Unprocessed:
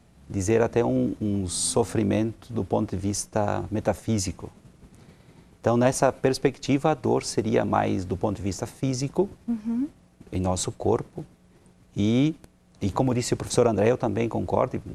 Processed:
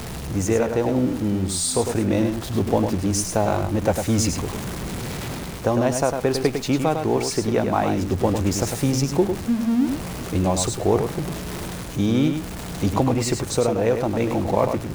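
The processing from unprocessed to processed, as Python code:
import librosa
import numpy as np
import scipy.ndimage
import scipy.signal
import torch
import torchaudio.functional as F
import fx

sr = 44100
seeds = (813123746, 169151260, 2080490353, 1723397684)

p1 = x + 0.5 * 10.0 ** (-32.0 / 20.0) * np.sign(x)
p2 = fx.rider(p1, sr, range_db=5, speed_s=0.5)
p3 = p2 + fx.echo_single(p2, sr, ms=102, db=-6.5, dry=0)
y = p3 * librosa.db_to_amplitude(1.5)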